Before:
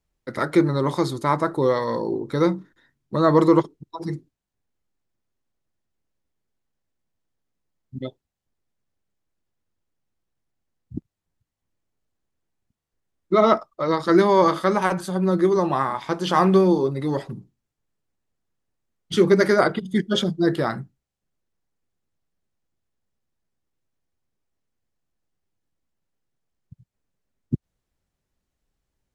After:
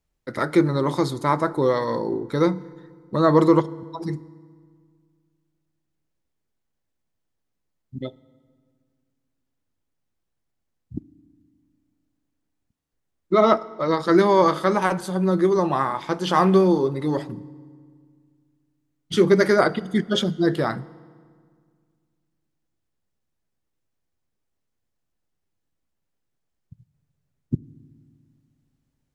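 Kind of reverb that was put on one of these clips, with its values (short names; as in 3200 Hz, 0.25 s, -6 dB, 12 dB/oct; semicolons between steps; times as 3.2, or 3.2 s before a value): FDN reverb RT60 1.9 s, low-frequency decay 1.3×, high-frequency decay 0.7×, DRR 19 dB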